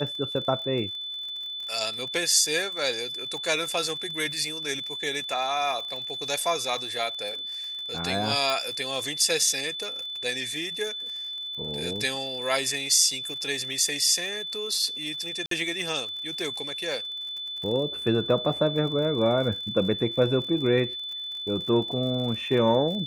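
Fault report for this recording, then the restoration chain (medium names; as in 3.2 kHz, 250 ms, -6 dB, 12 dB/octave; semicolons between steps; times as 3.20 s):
crackle 55 per s -35 dBFS
whine 3.5 kHz -32 dBFS
8.50 s: pop
15.46–15.51 s: dropout 53 ms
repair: de-click; band-stop 3.5 kHz, Q 30; interpolate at 15.46 s, 53 ms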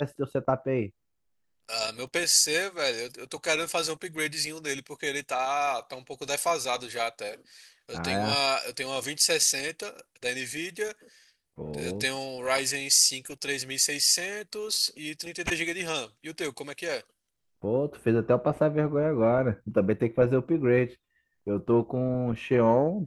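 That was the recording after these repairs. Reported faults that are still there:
nothing left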